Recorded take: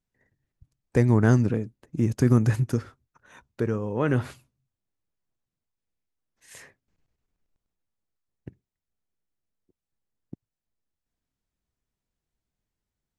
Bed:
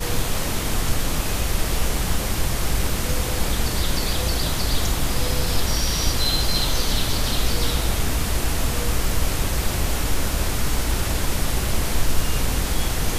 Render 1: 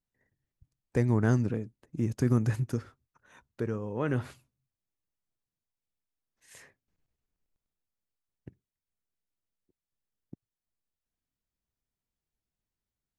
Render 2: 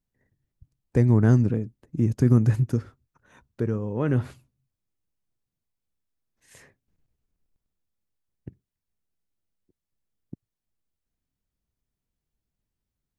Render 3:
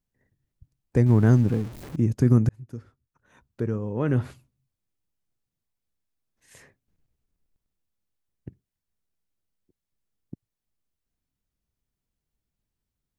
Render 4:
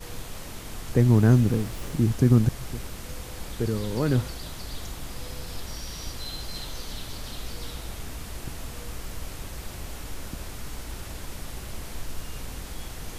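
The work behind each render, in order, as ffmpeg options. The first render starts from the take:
-af "volume=0.501"
-af "lowshelf=f=440:g=8.5"
-filter_complex "[0:a]asettb=1/sr,asplit=3[s0][s1][s2];[s0]atrim=end=1.064[s3];[s1]atrim=start=1.06:end=1.96,asetpts=PTS-STARTPTS,afade=t=in:d=0.004:c=qsin,afade=t=out:st=0.896:d=0.004:c=qsin,aeval=exprs='val(0)+0.5*0.0168*sgn(val(0))':c=same[s4];[s2]atrim=start=1.956[s5];[s3][s4]acrossfade=d=0.004:c1=hsin:c2=qsin[s6];[s6][s5]acrossfade=d=0.004:c1=qsin:c2=hsin,asplit=2[s7][s8];[s7]atrim=end=2.49,asetpts=PTS-STARTPTS,afade=t=out:st=2.486:d=0.004:c=hsin[s9];[s8]atrim=start=2.49,asetpts=PTS-STARTPTS,afade=t=in:d=1.73:c=qsin[s10];[s9][s10]concat=n=2:v=0:a=1"
-filter_complex "[1:a]volume=0.188[s0];[0:a][s0]amix=inputs=2:normalize=0"

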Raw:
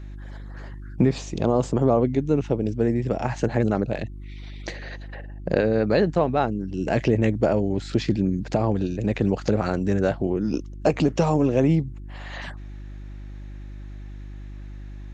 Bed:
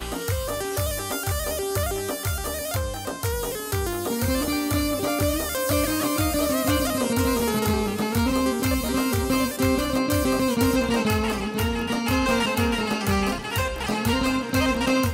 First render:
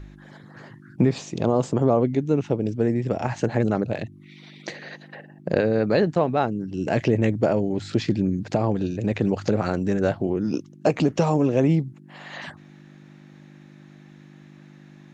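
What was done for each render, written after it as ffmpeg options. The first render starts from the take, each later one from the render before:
-af "bandreject=f=50:t=h:w=4,bandreject=f=100:t=h:w=4"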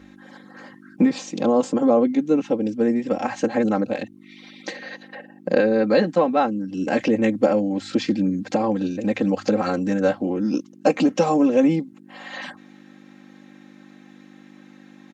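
-af "highpass=170,aecho=1:1:3.8:0.97"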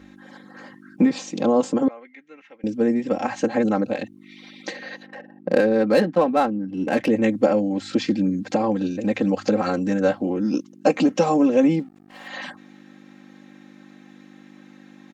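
-filter_complex "[0:a]asettb=1/sr,asplit=3[s0][s1][s2];[s0]atrim=end=1.884[s3];[s1]atrim=start=1.88:end=2.64,asetpts=PTS-STARTPTS,afade=t=in:d=0.004:c=qsin,afade=t=out:st=0.756:d=0.004:c=qsin,bandpass=f=2000:t=q:w=4.9[s4];[s2]atrim=start=2.636[s5];[s3][s4]acrossfade=d=0.004:c1=hsin:c2=qsin[s6];[s6][s5]acrossfade=d=0.004:c1=qsin:c2=hsin,asettb=1/sr,asplit=3[s7][s8][s9];[s7]atrim=end=5.064[s10];[s8]atrim=start=5.06:end=7.08,asetpts=PTS-STARTPTS,afade=t=in:d=0.004:c=qsin,afade=t=out:st=2.016:d=0.004:c=qsin,adynamicsmooth=sensitivity=4.5:basefreq=2100[s11];[s9]atrim=start=7.076[s12];[s10][s11]acrossfade=d=0.004:c1=hsin:c2=qsin[s13];[s13][s12]acrossfade=d=0.004:c1=qsin:c2=hsin,asplit=3[s14][s15][s16];[s14]afade=t=out:st=11.78:d=0.02[s17];[s15]aeval=exprs='sgn(val(0))*max(abs(val(0))-0.00266,0)':c=same,afade=t=in:st=11.78:d=0.02,afade=t=out:st=12.27:d=0.02[s18];[s16]afade=t=in:st=12.27:d=0.02[s19];[s17][s18][s19]amix=inputs=3:normalize=0"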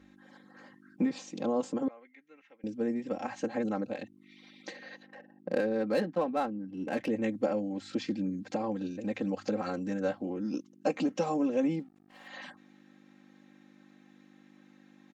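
-af "volume=0.266"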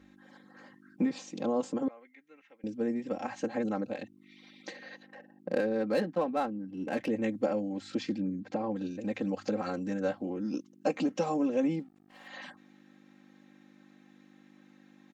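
-filter_complex "[0:a]asettb=1/sr,asplit=3[s0][s1][s2];[s0]atrim=end=8.184[s3];[s1]atrim=start=8.18:end=8.76,asetpts=PTS-STARTPTS,afade=t=in:d=0.004:c=qsin,afade=t=out:st=0.576:d=0.004:c=qsin,lowpass=f=2100:p=1[s4];[s2]atrim=start=8.756[s5];[s3][s4]acrossfade=d=0.004:c1=hsin:c2=qsin[s6];[s6][s5]acrossfade=d=0.004:c1=qsin:c2=hsin"

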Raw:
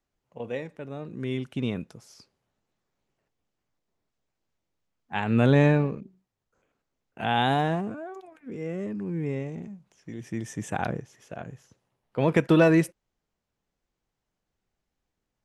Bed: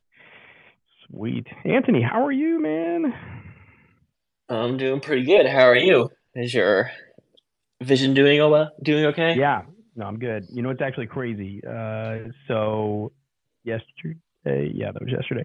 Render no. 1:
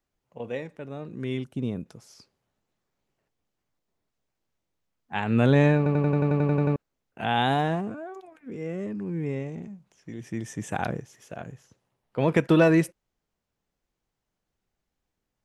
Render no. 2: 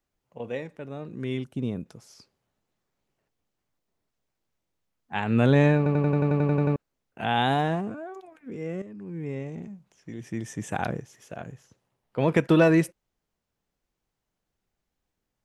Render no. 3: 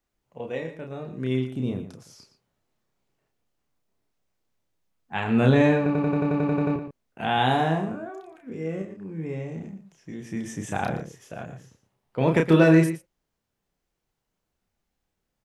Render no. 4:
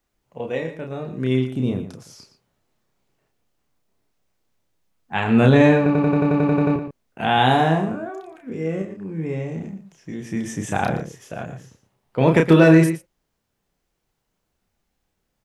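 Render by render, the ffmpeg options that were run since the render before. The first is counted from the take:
-filter_complex "[0:a]asettb=1/sr,asplit=3[s0][s1][s2];[s0]atrim=end=1.444[s3];[s1]atrim=start=1.44:end=1.86,asetpts=PTS-STARTPTS,afade=t=in:d=0.004:c=qsin,afade=t=out:st=0.416:d=0.004:c=qsin,equalizer=f=2300:w=0.52:g=-11.5[s4];[s2]atrim=start=1.856[s5];[s3][s4]acrossfade=d=0.004:c1=hsin:c2=qsin[s6];[s6][s5]acrossfade=d=0.004:c1=qsin:c2=hsin,asettb=1/sr,asplit=3[s7][s8][s9];[s7]atrim=end=10.704[s10];[s8]atrim=start=10.7:end=11.52,asetpts=PTS-STARTPTS,afade=t=in:d=0.004:c=qsin,afade=t=out:st=0.816:d=0.004:c=qsin,highshelf=f=6400:g=7[s11];[s9]atrim=start=11.516[s12];[s10][s11]acrossfade=d=0.004:c1=hsin:c2=qsin[s13];[s13][s12]acrossfade=d=0.004:c1=qsin:c2=hsin,asplit=12[s14][s15][s16][s17][s18][s19][s20][s21][s22][s23][s24][s25];[s14]atrim=end=5.862[s26];[s15]atrim=start=5.768:end=5.862[s27];[s16]atrim=start=5.768:end=5.862[s28];[s17]atrim=start=5.768:end=5.862[s29];[s18]atrim=start=5.768:end=5.862[s30];[s19]atrim=start=5.768:end=5.862[s31];[s20]atrim=start=5.768:end=5.862[s32];[s21]atrim=start=5.768:end=5.862[s33];[s22]atrim=start=5.768:end=5.862[s34];[s23]atrim=start=5.768:end=5.862[s35];[s24]atrim=start=5.768:end=5.862[s36];[s25]atrim=start=6.758[s37];[s26][s27]acrossfade=d=0.004:c1=hsin:c2=hsin[s38];[s38][s28]acrossfade=d=0.004:c1=hsin:c2=hsin[s39];[s39][s29]acrossfade=d=0.004:c1=hsin:c2=hsin[s40];[s40][s30]acrossfade=d=0.004:c1=hsin:c2=hsin[s41];[s41][s31]acrossfade=d=0.004:c1=hsin:c2=hsin[s42];[s42][s32]acrossfade=d=0.004:c1=hsin:c2=hsin[s43];[s43][s33]acrossfade=d=0.004:c1=hsin:c2=hsin[s44];[s44][s34]acrossfade=d=0.004:c1=hsin:c2=hsin[s45];[s45][s35]acrossfade=d=0.004:c1=hsin:c2=hsin[s46];[s46][s36]acrossfade=d=0.004:c1=hsin:c2=hsin[s47];[s47][s37]acrossfade=d=0.004:c1=hsin:c2=hsin"
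-filter_complex "[0:a]asplit=2[s0][s1];[s0]atrim=end=8.82,asetpts=PTS-STARTPTS,afade=t=out:st=8.816:d=0.004:c=hsin:silence=0.251189[s2];[s1]atrim=start=8.82,asetpts=PTS-STARTPTS,afade=t=in:d=0.79:silence=0.251189[s3];[s2][s3]concat=n=2:v=0:a=1"
-filter_complex "[0:a]asplit=2[s0][s1];[s1]adelay=31,volume=0.631[s2];[s0][s2]amix=inputs=2:normalize=0,asplit=2[s3][s4];[s4]adelay=116.6,volume=0.282,highshelf=f=4000:g=-2.62[s5];[s3][s5]amix=inputs=2:normalize=0"
-af "volume=1.88,alimiter=limit=0.708:level=0:latency=1"

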